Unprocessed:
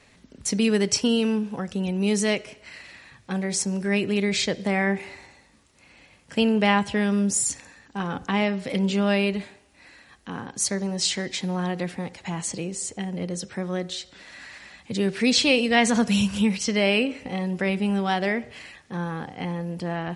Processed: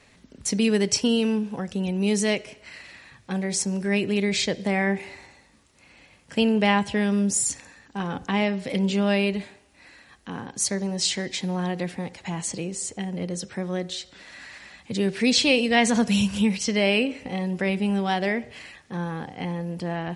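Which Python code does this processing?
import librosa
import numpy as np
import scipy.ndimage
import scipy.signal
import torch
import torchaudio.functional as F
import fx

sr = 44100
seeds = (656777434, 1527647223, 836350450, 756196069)

y = fx.dynamic_eq(x, sr, hz=1300.0, q=3.2, threshold_db=-48.0, ratio=4.0, max_db=-4)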